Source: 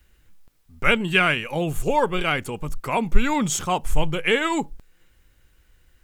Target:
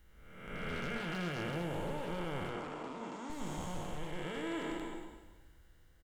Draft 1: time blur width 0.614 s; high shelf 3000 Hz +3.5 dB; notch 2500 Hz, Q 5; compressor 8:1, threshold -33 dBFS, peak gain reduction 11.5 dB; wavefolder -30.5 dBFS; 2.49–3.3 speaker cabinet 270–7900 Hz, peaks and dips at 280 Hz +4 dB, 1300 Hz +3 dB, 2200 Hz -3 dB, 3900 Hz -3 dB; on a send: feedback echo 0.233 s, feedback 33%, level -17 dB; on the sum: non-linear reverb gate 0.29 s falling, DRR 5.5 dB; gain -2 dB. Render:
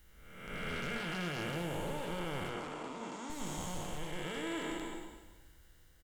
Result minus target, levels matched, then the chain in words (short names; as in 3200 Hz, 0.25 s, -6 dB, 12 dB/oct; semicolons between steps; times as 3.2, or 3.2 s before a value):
8000 Hz band +6.0 dB
time blur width 0.614 s; high shelf 3000 Hz -5 dB; notch 2500 Hz, Q 5; compressor 8:1, threshold -33 dBFS, peak gain reduction 11 dB; wavefolder -30.5 dBFS; 2.49–3.3 speaker cabinet 270–7900 Hz, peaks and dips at 280 Hz +4 dB, 1300 Hz +3 dB, 2200 Hz -3 dB, 3900 Hz -3 dB; on a send: feedback echo 0.233 s, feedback 33%, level -17 dB; on the sum: non-linear reverb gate 0.29 s falling, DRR 5.5 dB; gain -2 dB